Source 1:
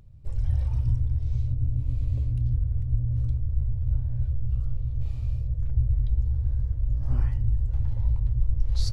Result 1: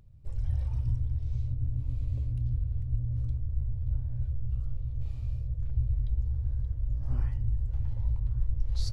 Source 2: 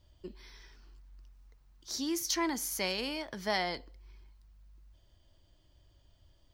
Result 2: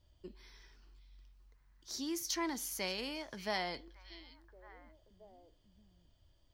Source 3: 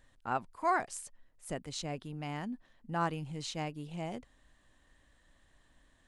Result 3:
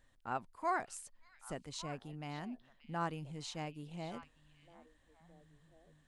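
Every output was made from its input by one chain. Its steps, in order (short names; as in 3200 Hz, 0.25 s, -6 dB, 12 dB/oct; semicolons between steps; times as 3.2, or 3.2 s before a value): delay with a stepping band-pass 0.578 s, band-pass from 3300 Hz, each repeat -1.4 oct, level -11.5 dB; gain -5 dB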